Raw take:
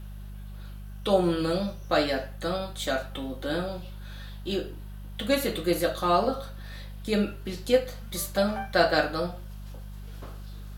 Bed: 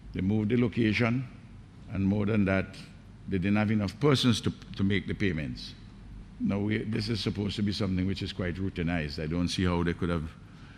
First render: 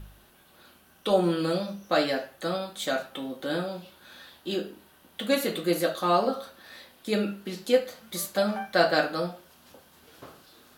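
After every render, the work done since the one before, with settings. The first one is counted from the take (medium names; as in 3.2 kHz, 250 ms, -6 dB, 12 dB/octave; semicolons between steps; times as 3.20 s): de-hum 50 Hz, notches 4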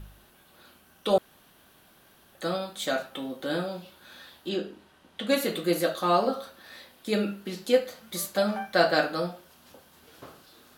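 1.18–2.35 s: room tone; 4.49–5.29 s: distance through air 52 m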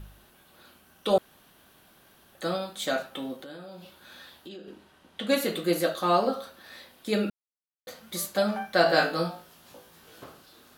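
3.35–4.68 s: compression 5:1, threshold -41 dBFS; 7.30–7.87 s: mute; 8.84–10.24 s: flutter echo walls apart 3.1 m, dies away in 0.26 s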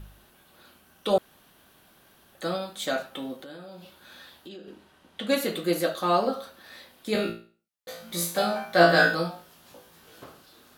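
7.13–9.15 s: flutter echo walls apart 3 m, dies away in 0.39 s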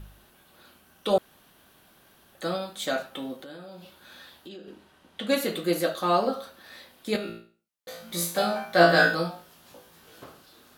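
7.16–8.05 s: compression 2:1, threshold -35 dBFS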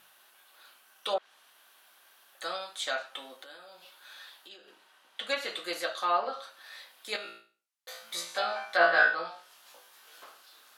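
high-pass 890 Hz 12 dB/octave; low-pass that closes with the level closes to 2.4 kHz, closed at -23.5 dBFS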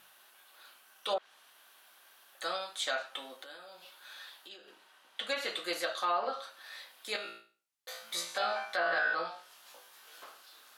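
peak limiter -22 dBFS, peak gain reduction 11.5 dB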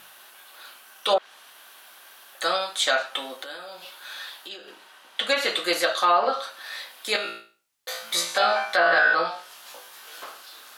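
trim +11.5 dB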